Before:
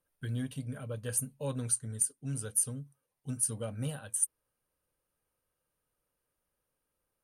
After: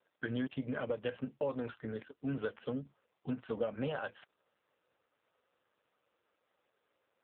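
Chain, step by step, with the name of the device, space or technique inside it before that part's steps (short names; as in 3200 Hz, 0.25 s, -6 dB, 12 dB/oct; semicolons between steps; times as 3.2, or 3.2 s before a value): 0.47–2.36 gate -48 dBFS, range -30 dB; voicemail (BPF 350–3000 Hz; compressor 10:1, threshold -44 dBFS, peak gain reduction 11 dB; gain +13.5 dB; AMR-NB 5.9 kbps 8000 Hz)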